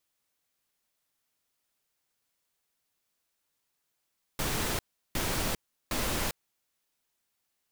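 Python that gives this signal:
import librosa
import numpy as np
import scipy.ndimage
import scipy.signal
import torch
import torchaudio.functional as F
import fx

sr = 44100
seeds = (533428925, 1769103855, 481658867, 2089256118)

y = fx.noise_burst(sr, seeds[0], colour='pink', on_s=0.4, off_s=0.36, bursts=3, level_db=-30.5)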